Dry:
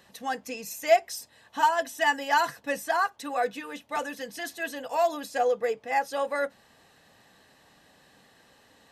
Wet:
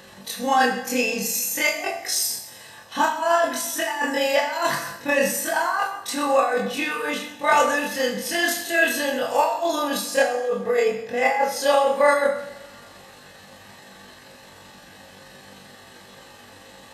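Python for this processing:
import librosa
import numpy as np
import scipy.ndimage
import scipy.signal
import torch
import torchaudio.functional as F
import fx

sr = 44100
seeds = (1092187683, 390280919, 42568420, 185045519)

y = fx.over_compress(x, sr, threshold_db=-28.0, ratio=-0.5)
y = fx.stretch_grains(y, sr, factor=1.9, grain_ms=87.0)
y = fx.rev_double_slope(y, sr, seeds[0], early_s=0.66, late_s=2.0, knee_db=-18, drr_db=1.0)
y = y * librosa.db_to_amplitude(8.5)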